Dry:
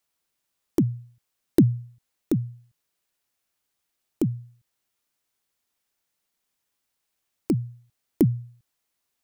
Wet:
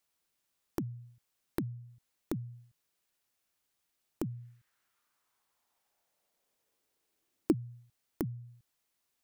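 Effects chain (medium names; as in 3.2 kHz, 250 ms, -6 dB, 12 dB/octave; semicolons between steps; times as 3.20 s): compression 6:1, threshold -32 dBFS, peak gain reduction 18 dB; 4.29–7.51 s: peaking EQ 2 kHz -> 290 Hz +11.5 dB 1.2 oct; trim -2 dB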